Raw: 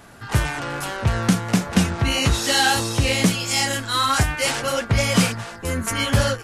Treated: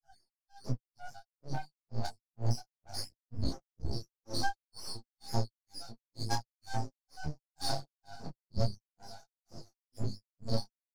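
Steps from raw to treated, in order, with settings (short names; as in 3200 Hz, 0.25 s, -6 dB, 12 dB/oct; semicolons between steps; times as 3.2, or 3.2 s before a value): random spectral dropouts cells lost 61%; brick-wall FIR band-stop 830–4300 Hz; on a send: thin delay 0.221 s, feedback 54%, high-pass 1600 Hz, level -13.5 dB; on the sum: compressor 16:1, threshold -22 dBFS, peak gain reduction 11 dB; HPF 83 Hz 6 dB/oct; air absorption 99 m; notches 50/100/150/200/250/300/350 Hz; grains 0.166 s, grains 3.6/s, pitch spread up and down by 0 st; time stretch by phase-locked vocoder 1.7×; graphic EQ 125/250/500/1000/2000/4000/8000 Hz +8/-4/-8/+7/-4/+7/-11 dB; half-wave rectifier; detuned doubles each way 11 cents; gain +8.5 dB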